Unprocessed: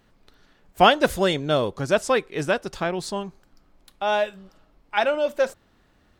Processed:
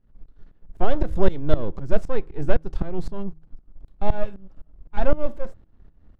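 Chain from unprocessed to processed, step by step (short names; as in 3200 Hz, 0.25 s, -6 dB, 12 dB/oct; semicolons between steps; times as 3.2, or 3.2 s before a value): half-wave gain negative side -12 dB; de-esser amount 65%; tilt -4.5 dB/oct; tremolo saw up 3.9 Hz, depth 90%; de-hum 158.3 Hz, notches 2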